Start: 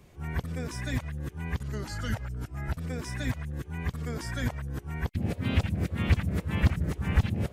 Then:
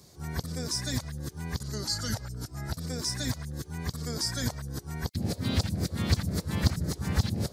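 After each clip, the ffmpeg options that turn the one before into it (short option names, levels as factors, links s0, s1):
-af "highpass=76,highshelf=f=3500:t=q:w=3:g=9"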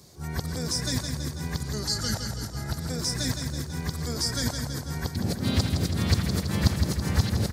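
-af "aecho=1:1:164|328|492|656|820|984|1148|1312:0.473|0.279|0.165|0.0972|0.0573|0.0338|0.02|0.0118,volume=1.33"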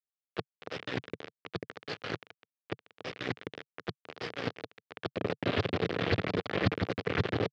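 -af "aeval=exprs='val(0)*gte(abs(val(0)),0.0794)':c=same,highpass=f=120:w=0.5412,highpass=f=120:w=1.3066,equalizer=f=140:t=q:w=4:g=-7,equalizer=f=220:t=q:w=4:g=-10,equalizer=f=450:t=q:w=4:g=5,equalizer=f=930:t=q:w=4:g=-6,lowpass=f=3100:w=0.5412,lowpass=f=3100:w=1.3066,volume=1.19"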